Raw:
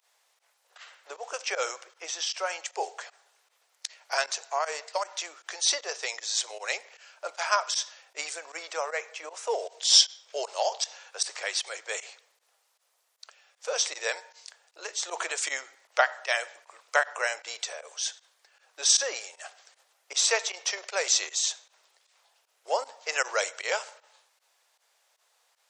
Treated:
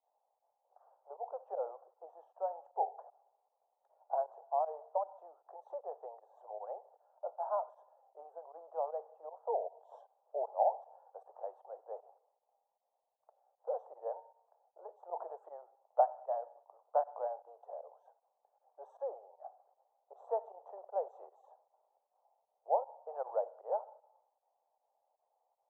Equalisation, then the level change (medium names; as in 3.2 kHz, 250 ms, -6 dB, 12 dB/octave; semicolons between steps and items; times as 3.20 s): high-pass 560 Hz 24 dB/octave; elliptic low-pass 830 Hz, stop band 60 dB; 0.0 dB